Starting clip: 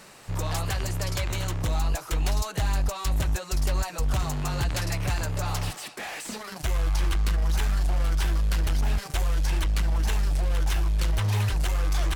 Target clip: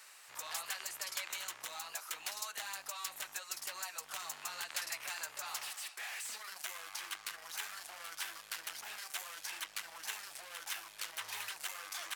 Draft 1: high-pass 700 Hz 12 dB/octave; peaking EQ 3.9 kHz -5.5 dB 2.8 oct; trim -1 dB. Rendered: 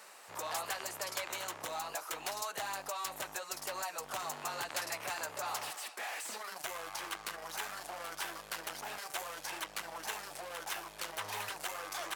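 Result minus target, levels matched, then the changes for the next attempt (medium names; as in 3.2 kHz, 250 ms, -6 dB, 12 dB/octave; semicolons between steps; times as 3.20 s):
500 Hz band +10.5 dB
change: high-pass 1.6 kHz 12 dB/octave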